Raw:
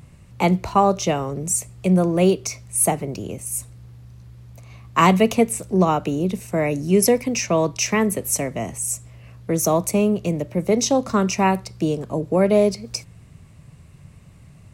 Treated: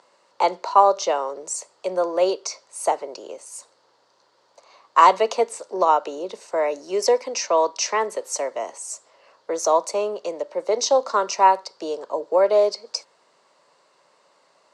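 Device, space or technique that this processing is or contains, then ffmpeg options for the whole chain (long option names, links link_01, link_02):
phone speaker on a table: -af "highpass=frequency=410:width=0.5412,highpass=frequency=410:width=1.3066,equalizer=frequency=550:width_type=q:width=4:gain=6,equalizer=frequency=950:width_type=q:width=4:gain=10,equalizer=frequency=1400:width_type=q:width=4:gain=4,equalizer=frequency=2400:width_type=q:width=4:gain=-7,equalizer=frequency=4500:width_type=q:width=4:gain=8,lowpass=frequency=7400:width=0.5412,lowpass=frequency=7400:width=1.3066,volume=-2.5dB"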